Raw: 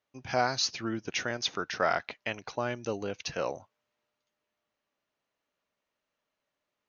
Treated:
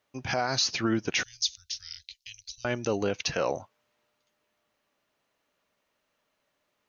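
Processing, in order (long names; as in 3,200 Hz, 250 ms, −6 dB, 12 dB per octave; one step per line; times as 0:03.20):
0:01.23–0:02.65: inverse Chebyshev band-stop filter 260–930 Hz, stop band 80 dB
brickwall limiter −24 dBFS, peak gain reduction 11 dB
level +8 dB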